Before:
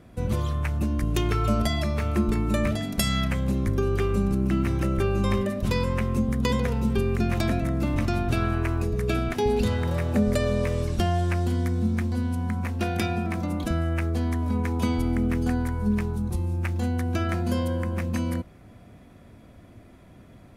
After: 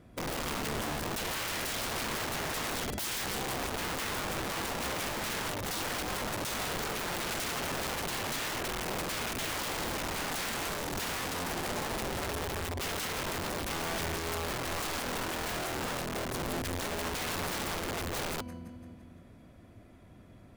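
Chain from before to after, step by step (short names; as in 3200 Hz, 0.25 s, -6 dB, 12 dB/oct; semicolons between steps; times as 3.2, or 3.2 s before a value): split-band echo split 410 Hz, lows 0.269 s, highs 0.17 s, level -11 dB; wrapped overs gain 24.5 dB; gain -5.5 dB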